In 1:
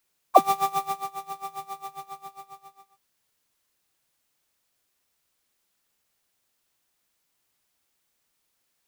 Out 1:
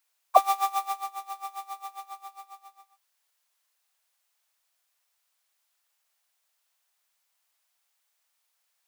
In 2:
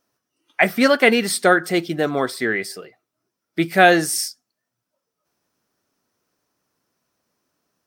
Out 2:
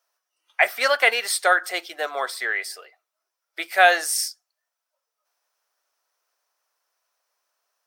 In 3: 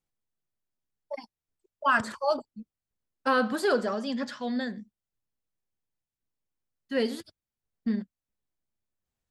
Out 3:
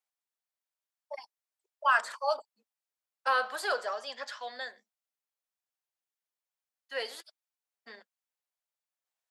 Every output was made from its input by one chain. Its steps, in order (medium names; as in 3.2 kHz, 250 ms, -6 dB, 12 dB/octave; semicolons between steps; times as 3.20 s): high-pass 610 Hz 24 dB/octave; trim -1 dB